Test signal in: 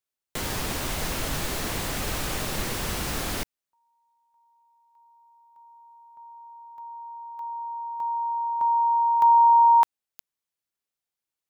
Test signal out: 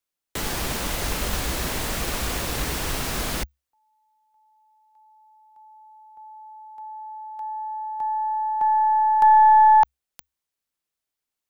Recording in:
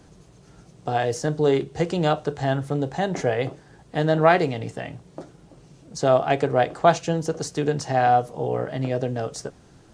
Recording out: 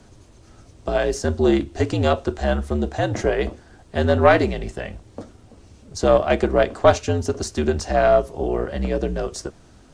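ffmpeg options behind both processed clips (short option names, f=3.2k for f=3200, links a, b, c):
-af "afreqshift=-67,aeval=exprs='0.668*(cos(1*acos(clip(val(0)/0.668,-1,1)))-cos(1*PI/2))+0.0422*(cos(4*acos(clip(val(0)/0.668,-1,1)))-cos(4*PI/2))':c=same,volume=2.5dB"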